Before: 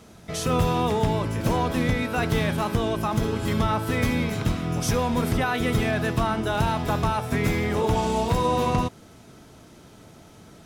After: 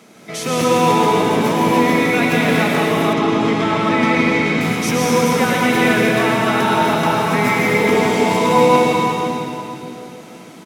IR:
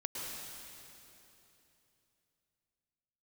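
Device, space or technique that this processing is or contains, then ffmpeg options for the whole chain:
stadium PA: -filter_complex "[0:a]highpass=frequency=170:width=0.5412,highpass=frequency=170:width=1.3066,equalizer=frequency=2200:width_type=o:width=0.34:gain=7,aecho=1:1:169.1|242:0.355|0.355[link_01];[1:a]atrim=start_sample=2205[link_02];[link_01][link_02]afir=irnorm=-1:irlink=0,asettb=1/sr,asplit=3[link_03][link_04][link_05];[link_03]atrim=end=3.134[link_06];[link_04]atrim=start=3.13:end=4.61,asetpts=PTS-STARTPTS,afade=type=in:duration=0.004:curve=qsin,afade=type=out:start_time=1.476:duration=0.004:curve=qsin,lowpass=5300[link_07];[link_05]atrim=start=4.606[link_08];[link_06][link_07]acrossfade=duration=0.004:curve1=hsin:curve2=qsin[link_09];[link_09][link_08]acrossfade=duration=0.004:curve1=qsin:curve2=hsin,volume=6.5dB"

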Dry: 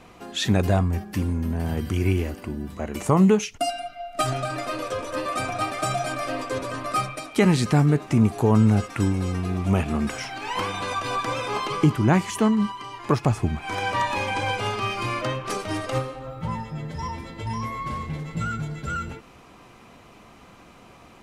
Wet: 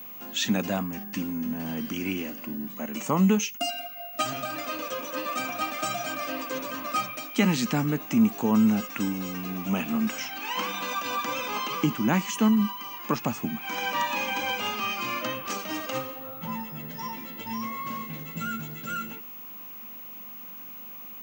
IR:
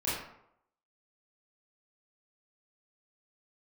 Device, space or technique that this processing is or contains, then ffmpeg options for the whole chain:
old television with a line whistle: -af "highpass=frequency=180:width=0.5412,highpass=frequency=180:width=1.3066,equalizer=frequency=230:width_type=q:width=4:gain=5,equalizer=frequency=390:width_type=q:width=4:gain=-9,equalizer=frequency=690:width_type=q:width=4:gain=-4,equalizer=frequency=2800:width_type=q:width=4:gain=6,equalizer=frequency=6400:width_type=q:width=4:gain=7,lowpass=frequency=8200:width=0.5412,lowpass=frequency=8200:width=1.3066,aeval=exprs='val(0)+0.0158*sin(2*PI*15625*n/s)':channel_layout=same,volume=-3dB"

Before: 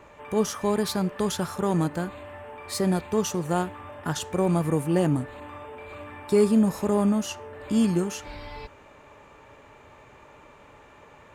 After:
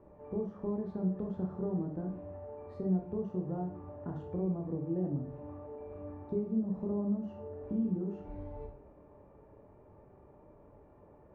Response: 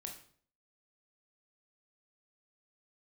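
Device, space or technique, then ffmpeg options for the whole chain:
television next door: -filter_complex "[0:a]acompressor=threshold=-29dB:ratio=4,lowpass=560[link_01];[1:a]atrim=start_sample=2205[link_02];[link_01][link_02]afir=irnorm=-1:irlink=0"

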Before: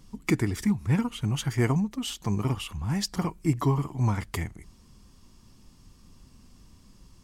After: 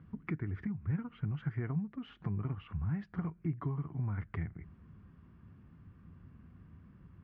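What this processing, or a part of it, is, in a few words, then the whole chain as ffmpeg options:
bass amplifier: -af "acompressor=threshold=-36dB:ratio=4,highpass=68,equalizer=frequency=69:width_type=q:width=4:gain=7,equalizer=frequency=98:width_type=q:width=4:gain=8,equalizer=frequency=160:width_type=q:width=4:gain=9,equalizer=frequency=550:width_type=q:width=4:gain=-3,equalizer=frequency=900:width_type=q:width=4:gain=-6,equalizer=frequency=1500:width_type=q:width=4:gain=6,lowpass=frequency=2100:width=0.5412,lowpass=frequency=2100:width=1.3066,volume=-3dB"

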